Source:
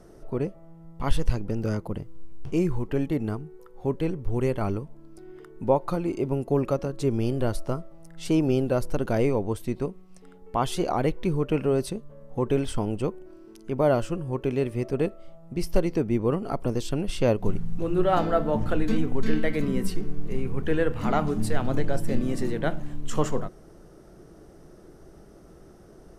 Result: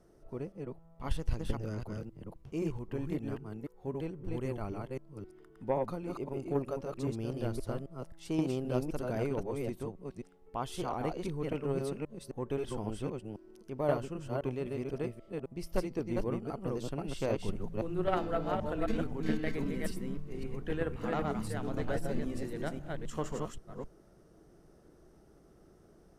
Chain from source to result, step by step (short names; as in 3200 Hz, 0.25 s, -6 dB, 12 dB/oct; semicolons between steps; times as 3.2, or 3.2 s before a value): reverse delay 0.262 s, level -2 dB; added harmonics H 3 -17 dB, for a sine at -6.5 dBFS; gain -7.5 dB